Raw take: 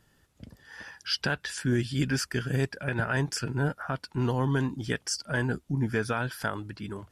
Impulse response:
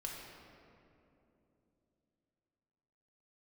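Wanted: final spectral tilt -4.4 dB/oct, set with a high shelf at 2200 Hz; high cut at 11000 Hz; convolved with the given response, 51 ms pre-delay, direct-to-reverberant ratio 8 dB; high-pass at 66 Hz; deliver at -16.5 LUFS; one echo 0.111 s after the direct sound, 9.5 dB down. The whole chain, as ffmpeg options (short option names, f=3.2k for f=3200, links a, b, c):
-filter_complex "[0:a]highpass=66,lowpass=11k,highshelf=f=2.2k:g=4.5,aecho=1:1:111:0.335,asplit=2[a][b];[1:a]atrim=start_sample=2205,adelay=51[c];[b][c]afir=irnorm=-1:irlink=0,volume=-7.5dB[d];[a][d]amix=inputs=2:normalize=0,volume=11.5dB"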